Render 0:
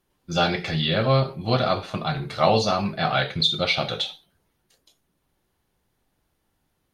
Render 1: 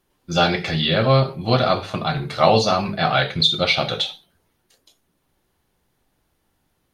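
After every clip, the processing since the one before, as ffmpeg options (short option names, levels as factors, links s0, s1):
-af "bandreject=f=50:t=h:w=6,bandreject=f=100:t=h:w=6,bandreject=f=150:t=h:w=6,bandreject=f=200:t=h:w=6,volume=1.58"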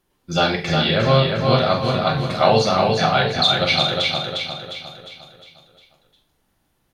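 -filter_complex "[0:a]asplit=2[s0][s1];[s1]adelay=43,volume=0.376[s2];[s0][s2]amix=inputs=2:normalize=0,asplit=2[s3][s4];[s4]aecho=0:1:355|710|1065|1420|1775|2130:0.631|0.297|0.139|0.0655|0.0308|0.0145[s5];[s3][s5]amix=inputs=2:normalize=0,volume=0.891"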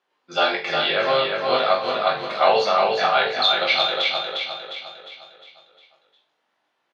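-filter_complex "[0:a]highpass=580,lowpass=3500,asplit=2[s0][s1];[s1]adelay=20,volume=0.631[s2];[s0][s2]amix=inputs=2:normalize=0"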